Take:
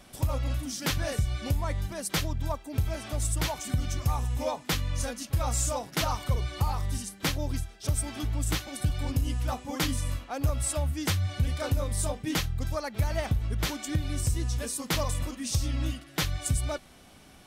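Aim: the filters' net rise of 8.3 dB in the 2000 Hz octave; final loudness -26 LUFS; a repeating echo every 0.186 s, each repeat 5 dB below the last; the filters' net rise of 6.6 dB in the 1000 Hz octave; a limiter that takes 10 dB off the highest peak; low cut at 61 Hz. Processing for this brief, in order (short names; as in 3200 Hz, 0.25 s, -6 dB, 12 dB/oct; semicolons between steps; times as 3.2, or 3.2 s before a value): HPF 61 Hz; bell 1000 Hz +6 dB; bell 2000 Hz +8.5 dB; limiter -20.5 dBFS; feedback echo 0.186 s, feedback 56%, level -5 dB; gain +4 dB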